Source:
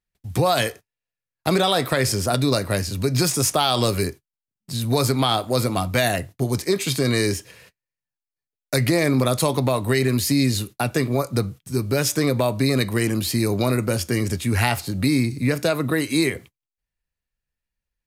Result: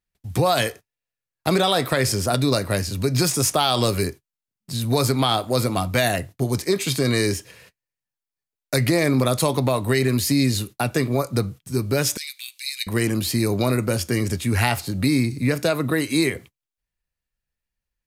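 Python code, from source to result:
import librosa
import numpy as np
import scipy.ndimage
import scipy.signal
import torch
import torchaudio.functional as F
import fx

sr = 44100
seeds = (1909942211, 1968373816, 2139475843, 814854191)

y = fx.steep_highpass(x, sr, hz=2300.0, slope=36, at=(12.17, 12.87))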